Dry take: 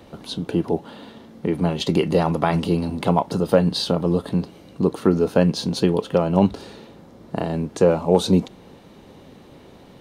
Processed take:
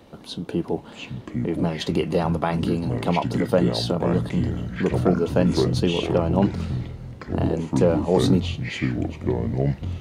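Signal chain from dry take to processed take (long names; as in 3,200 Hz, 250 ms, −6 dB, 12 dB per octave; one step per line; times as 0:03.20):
delay with pitch and tempo change per echo 580 ms, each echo −6 semitones, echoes 2
level −3.5 dB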